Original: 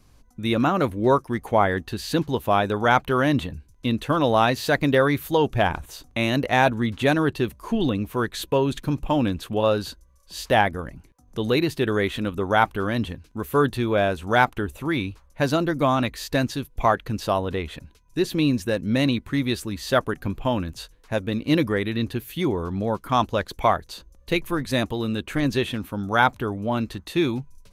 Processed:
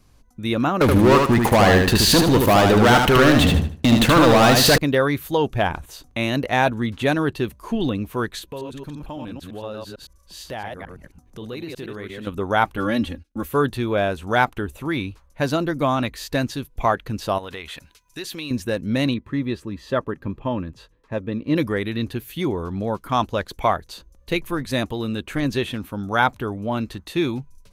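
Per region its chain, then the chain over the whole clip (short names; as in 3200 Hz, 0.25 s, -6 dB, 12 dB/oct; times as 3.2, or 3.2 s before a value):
0.81–4.78 sample leveller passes 5 + compressor, threshold -13 dBFS + feedback echo 76 ms, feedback 28%, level -4 dB
8.39–12.27 reverse delay 0.112 s, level -3.5 dB + compressor 2:1, threshold -39 dBFS
12.77–13.48 gate -45 dBFS, range -22 dB + notch 990 Hz, Q 7.2 + comb 3.6 ms, depth 98%
17.38–18.51 tilt shelf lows -8 dB, about 650 Hz + compressor 2.5:1, threshold -32 dBFS
19.14–21.56 LPF 1600 Hz 6 dB/oct + notch comb 730 Hz
whole clip: dry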